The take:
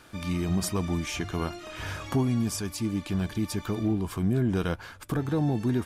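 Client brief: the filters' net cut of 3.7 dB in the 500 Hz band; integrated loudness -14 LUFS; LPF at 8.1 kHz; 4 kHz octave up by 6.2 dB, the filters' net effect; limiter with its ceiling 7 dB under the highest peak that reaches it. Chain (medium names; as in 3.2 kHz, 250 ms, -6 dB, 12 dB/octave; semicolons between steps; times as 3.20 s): low-pass 8.1 kHz; peaking EQ 500 Hz -5.5 dB; peaking EQ 4 kHz +8.5 dB; trim +18.5 dB; peak limiter -4.5 dBFS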